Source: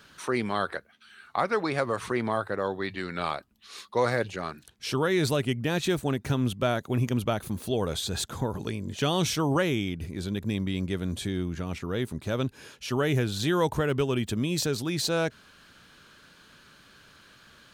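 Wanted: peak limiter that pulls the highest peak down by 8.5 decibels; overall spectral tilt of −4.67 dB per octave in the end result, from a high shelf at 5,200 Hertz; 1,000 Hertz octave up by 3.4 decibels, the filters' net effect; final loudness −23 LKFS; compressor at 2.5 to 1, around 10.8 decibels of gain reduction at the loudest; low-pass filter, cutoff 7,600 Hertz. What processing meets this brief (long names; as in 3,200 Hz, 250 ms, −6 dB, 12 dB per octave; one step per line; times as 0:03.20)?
low-pass filter 7,600 Hz
parametric band 1,000 Hz +4 dB
high-shelf EQ 5,200 Hz +6 dB
downward compressor 2.5 to 1, threshold −35 dBFS
level +14.5 dB
brickwall limiter −12 dBFS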